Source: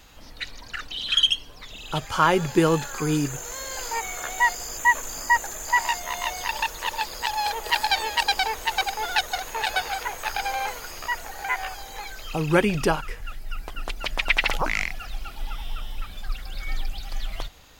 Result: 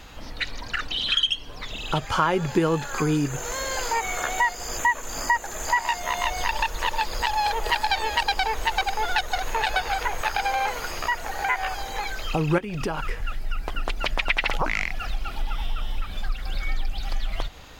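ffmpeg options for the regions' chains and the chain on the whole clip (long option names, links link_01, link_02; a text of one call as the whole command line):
ffmpeg -i in.wav -filter_complex "[0:a]asettb=1/sr,asplit=3[link_01][link_02][link_03];[link_01]atrim=end=6.244[link_04];[link_02]atrim=start=6.24:end=10.21,asetpts=PTS-STARTPTS,afade=type=in:duration=0.004:curve=qsin,afade=type=out:start_time=3.966:duration=0.004:curve=qsin,lowshelf=frequency=62:gain=10.5,volume=10.5dB,asoftclip=hard,volume=-10.5dB[link_05];[link_03]atrim=start=10.206[link_06];[link_04][link_05]acrossfade=duration=0.004:curve1=hsin:curve2=qsin[link_07];[link_07][link_06]acrossfade=duration=0.004:curve1=qsin:curve2=hsin,asettb=1/sr,asplit=3[link_08][link_09][link_10];[link_08]atrim=end=12.584[link_11];[link_09]atrim=start=12.58:end=13.09,asetpts=PTS-STARTPTS,afade=type=in:duration=0.004:curve=qsin,afade=type=out:start_time=0.506:duration=0.004:curve=qsin,acompressor=threshold=-29dB:ratio=6:attack=3.2:release=140:knee=1:detection=peak,acrusher=bits=7:mode=log:mix=0:aa=0.000001[link_12];[link_10]atrim=start=13.086[link_13];[link_11][link_12]acrossfade=duration=0.004:curve1=hsin:curve2=qsin[link_14];[link_14][link_13]acrossfade=duration=0.004:curve1=qsin:curve2=hsin,highshelf=frequency=5500:gain=-9.5,acompressor=threshold=-31dB:ratio=2.5,volume=8dB" out.wav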